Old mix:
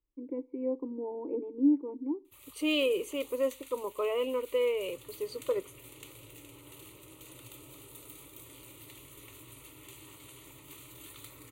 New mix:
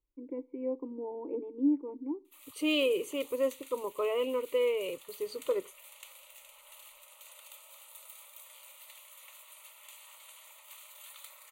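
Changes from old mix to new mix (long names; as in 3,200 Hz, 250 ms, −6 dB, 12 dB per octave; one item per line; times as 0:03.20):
first voice: add spectral tilt +1.5 dB per octave
background: add Butterworth high-pass 560 Hz 72 dB per octave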